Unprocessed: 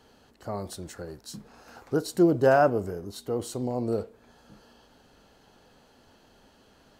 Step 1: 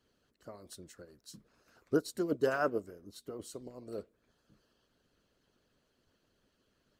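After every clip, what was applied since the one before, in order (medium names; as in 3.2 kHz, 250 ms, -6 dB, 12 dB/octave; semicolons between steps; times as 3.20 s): peaking EQ 820 Hz -15 dB 0.31 oct; harmonic-percussive split harmonic -14 dB; upward expansion 1.5:1, over -45 dBFS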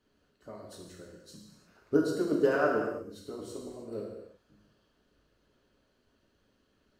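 treble shelf 4.7 kHz -7.5 dB; gated-style reverb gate 380 ms falling, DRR -2.5 dB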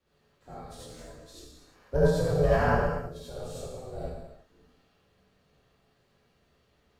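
ring modulator 310 Hz; frequency shift -170 Hz; gated-style reverb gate 110 ms rising, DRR -6.5 dB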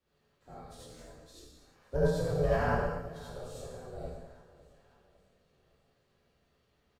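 feedback delay 556 ms, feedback 50%, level -20 dB; trim -5 dB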